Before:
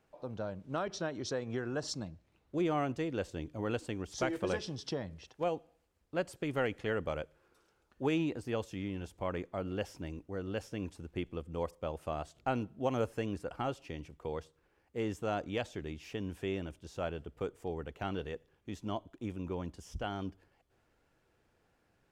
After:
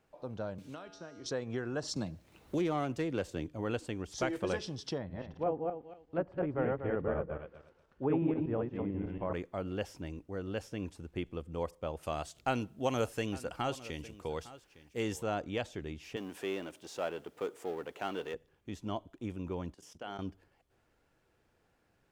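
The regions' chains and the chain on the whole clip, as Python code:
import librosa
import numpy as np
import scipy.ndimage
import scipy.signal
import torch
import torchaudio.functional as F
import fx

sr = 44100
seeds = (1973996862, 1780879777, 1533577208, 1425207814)

y = fx.chain(x, sr, fx.comb_fb(f0_hz=95.0, decay_s=0.95, harmonics='odd', damping=0.0, mix_pct=80),
    fx.band_squash(depth_pct=100), at=(0.58, 1.26))
y = fx.chain(y, sr, fx.self_delay(depth_ms=0.066),
    fx.high_shelf(hz=8200.0, db=6.5),
    fx.band_squash(depth_pct=70), at=(1.96, 3.47))
y = fx.chain(y, sr, fx.reverse_delay_fb(ms=120, feedback_pct=41, wet_db=-1),
    fx.env_lowpass_down(base_hz=1300.0, full_db=-31.5),
    fx.lowpass(hz=2100.0, slope=6), at=(4.98, 9.33))
y = fx.chain(y, sr, fx.high_shelf(hz=2500.0, db=10.5),
    fx.echo_single(ms=858, db=-17.5), at=(12.03, 15.23))
y = fx.chain(y, sr, fx.law_mismatch(coded='mu'),
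    fx.highpass(hz=300.0, slope=12), at=(16.16, 18.34))
y = fx.chain(y, sr, fx.highpass(hz=230.0, slope=12),
    fx.hum_notches(base_hz=60, count=8),
    fx.level_steps(step_db=14), at=(19.74, 20.19))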